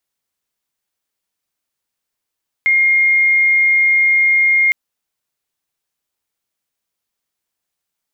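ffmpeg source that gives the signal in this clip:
-f lavfi -i "sine=f=2130:d=2.06:r=44100,volume=8.56dB"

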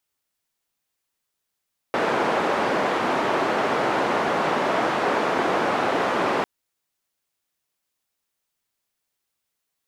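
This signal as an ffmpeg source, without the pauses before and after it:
-f lavfi -i "anoisesrc=c=white:d=4.5:r=44100:seed=1,highpass=f=260,lowpass=f=1000,volume=-3.4dB"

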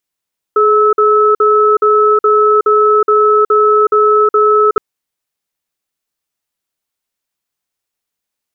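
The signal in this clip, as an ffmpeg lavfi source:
-f lavfi -i "aevalsrc='0.355*(sin(2*PI*423*t)+sin(2*PI*1300*t))*clip(min(mod(t,0.42),0.37-mod(t,0.42))/0.005,0,1)':d=4.22:s=44100"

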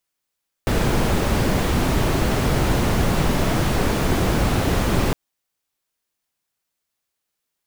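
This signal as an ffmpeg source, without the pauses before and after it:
-f lavfi -i "anoisesrc=c=brown:a=0.556:d=4.46:r=44100:seed=1"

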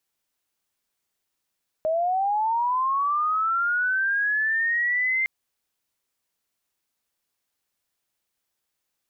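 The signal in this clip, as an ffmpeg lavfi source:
-f lavfi -i "aevalsrc='0.0944*sin(2*PI*(620*t+1480*t*t/(2*3.41)))':d=3.41:s=44100"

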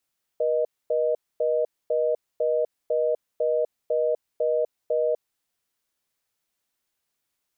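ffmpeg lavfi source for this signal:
-f lavfi -i "aevalsrc='0.0708*(sin(2*PI*480*t)+sin(2*PI*620*t))*clip(min(mod(t,0.5),0.25-mod(t,0.5))/0.005,0,1)':d=4.94:s=44100"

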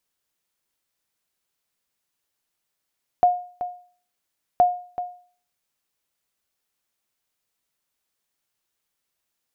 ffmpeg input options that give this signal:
-f lavfi -i "aevalsrc='0.355*(sin(2*PI*716*mod(t,1.37))*exp(-6.91*mod(t,1.37)/0.45)+0.237*sin(2*PI*716*max(mod(t,1.37)-0.38,0))*exp(-6.91*max(mod(t,1.37)-0.38,0)/0.45))':d=2.74:s=44100"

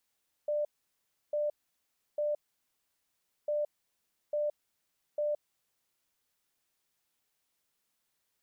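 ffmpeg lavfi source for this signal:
-f lavfi -i "aevalsrc='0.0398*sin(2*PI*594*t)*clip(min(mod(mod(t,3),0.85),0.17-mod(mod(t,3),0.85))/0.005,0,1)*lt(mod(t,3),2.55)':d=6:s=44100"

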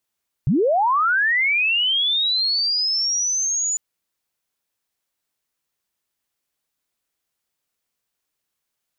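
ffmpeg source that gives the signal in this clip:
-f lavfi -i "aevalsrc='pow(10,(-14.5-5*t/3.3)/20)*sin(2*PI*(110*t+6890*t*t/(2*3.3)))':d=3.3:s=44100"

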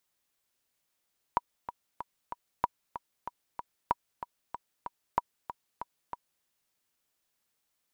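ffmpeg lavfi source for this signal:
-f lavfi -i "aevalsrc='pow(10,(-11.5-12*gte(mod(t,4*60/189),60/189))/20)*sin(2*PI*964*mod(t,60/189))*exp(-6.91*mod(t,60/189)/0.03)':d=5.07:s=44100"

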